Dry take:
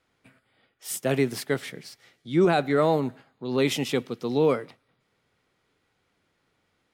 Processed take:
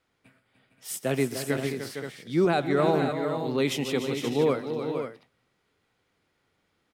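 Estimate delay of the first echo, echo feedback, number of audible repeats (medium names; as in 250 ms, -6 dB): 132 ms, no regular repeats, 5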